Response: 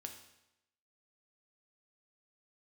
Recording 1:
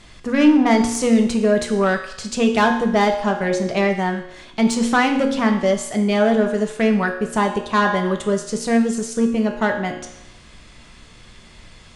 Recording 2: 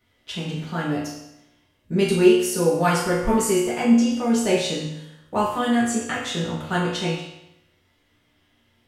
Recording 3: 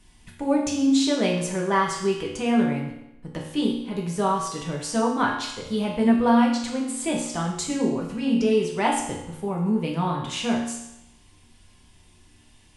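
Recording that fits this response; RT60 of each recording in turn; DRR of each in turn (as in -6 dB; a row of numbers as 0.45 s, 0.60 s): 1; 0.90 s, 0.90 s, 0.90 s; 3.5 dB, -7.5 dB, -2.5 dB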